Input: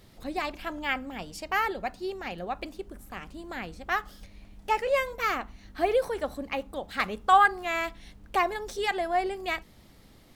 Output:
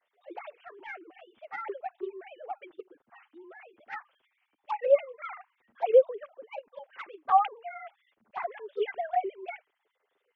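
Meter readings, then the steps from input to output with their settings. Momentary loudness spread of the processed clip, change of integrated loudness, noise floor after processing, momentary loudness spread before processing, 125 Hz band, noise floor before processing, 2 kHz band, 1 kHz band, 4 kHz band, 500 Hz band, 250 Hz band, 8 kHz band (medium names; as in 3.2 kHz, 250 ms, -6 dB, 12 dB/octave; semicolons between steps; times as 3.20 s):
21 LU, -0.5 dB, -80 dBFS, 14 LU, under -30 dB, -55 dBFS, -13.5 dB, -4.5 dB, under -15 dB, +2.0 dB, under -10 dB, under -30 dB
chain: formants replaced by sine waves; touch-sensitive flanger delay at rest 10.2 ms, full sweep at -21.5 dBFS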